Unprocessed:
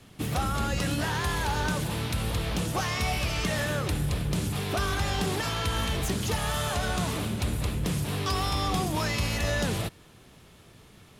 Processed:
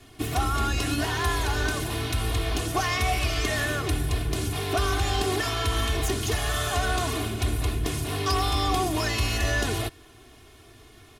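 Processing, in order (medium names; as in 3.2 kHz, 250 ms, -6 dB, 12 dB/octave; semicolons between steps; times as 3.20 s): comb 2.8 ms, depth 96%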